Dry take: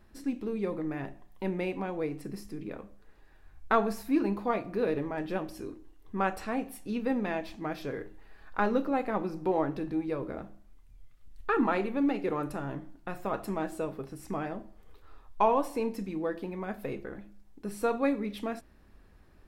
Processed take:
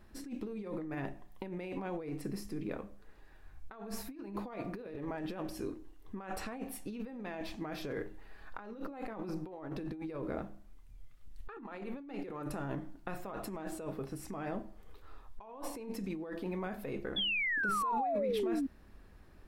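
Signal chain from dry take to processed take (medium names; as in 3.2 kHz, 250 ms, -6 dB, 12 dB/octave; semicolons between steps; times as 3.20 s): compressor with a negative ratio -37 dBFS, ratio -1; painted sound fall, 17.16–18.67 s, 260–3500 Hz -29 dBFS; trim -4 dB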